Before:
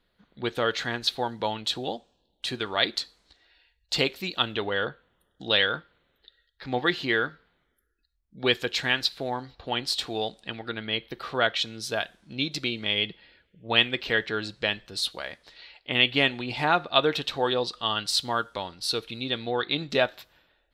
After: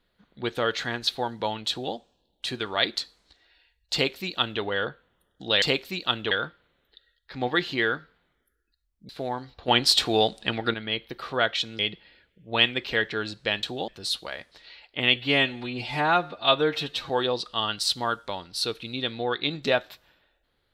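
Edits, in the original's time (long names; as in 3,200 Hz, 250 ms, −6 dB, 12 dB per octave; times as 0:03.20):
0:01.70–0:01.95: duplicate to 0:14.80
0:03.93–0:04.62: duplicate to 0:05.62
0:08.40–0:09.10: remove
0:09.69–0:10.75: clip gain +8 dB
0:11.80–0:12.96: remove
0:16.08–0:17.37: time-stretch 1.5×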